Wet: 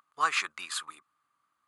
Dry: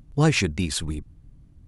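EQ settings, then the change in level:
high-pass with resonance 1,200 Hz, resonance Q 9.5
notch filter 5,600 Hz, Q 7.9
−6.5 dB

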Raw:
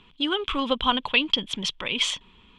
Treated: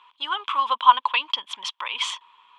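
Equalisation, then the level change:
high-pass with resonance 1,000 Hz, resonance Q 5.8
−3.5 dB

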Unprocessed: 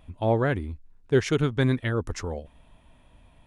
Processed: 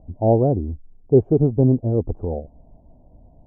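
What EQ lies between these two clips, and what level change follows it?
elliptic low-pass filter 750 Hz, stop band 60 dB
+7.5 dB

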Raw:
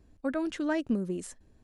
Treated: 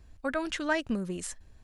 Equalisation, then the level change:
parametric band 300 Hz −12.5 dB 2.3 octaves
high-shelf EQ 7,800 Hz −4.5 dB
+8.5 dB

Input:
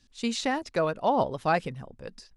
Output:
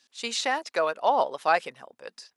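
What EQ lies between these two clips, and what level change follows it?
high-pass filter 600 Hz 12 dB per octave
+4.0 dB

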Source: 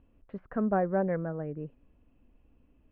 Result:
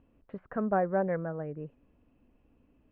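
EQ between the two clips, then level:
dynamic equaliser 260 Hz, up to −5 dB, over −43 dBFS, Q 0.88
high-frequency loss of the air 150 metres
low-shelf EQ 66 Hz −11 dB
+2.5 dB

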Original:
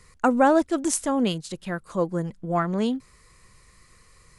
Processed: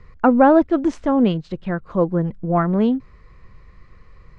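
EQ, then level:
high-frequency loss of the air 190 metres
RIAA equalisation playback
low-shelf EQ 210 Hz −11.5 dB
+5.5 dB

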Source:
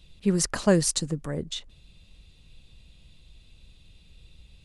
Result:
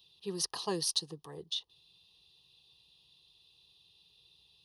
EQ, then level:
high-pass filter 340 Hz 12 dB per octave
phaser with its sweep stopped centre 600 Hz, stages 4
phaser with its sweep stopped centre 2,200 Hz, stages 6
+1.5 dB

